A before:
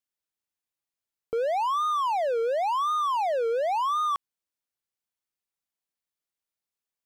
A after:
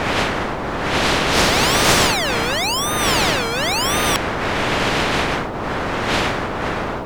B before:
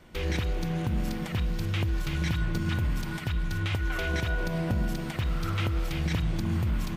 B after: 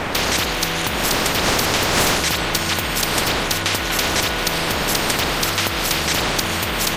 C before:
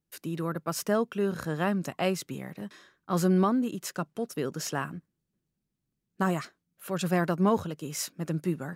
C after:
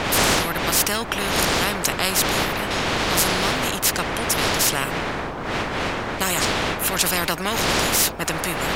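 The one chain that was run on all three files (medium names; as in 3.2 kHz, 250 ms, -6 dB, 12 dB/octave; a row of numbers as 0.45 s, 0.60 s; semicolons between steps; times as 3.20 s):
wind noise 510 Hz -25 dBFS; spectrum-flattening compressor 4:1; trim -1 dB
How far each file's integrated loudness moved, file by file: +8.5 LU, +12.0 LU, +9.5 LU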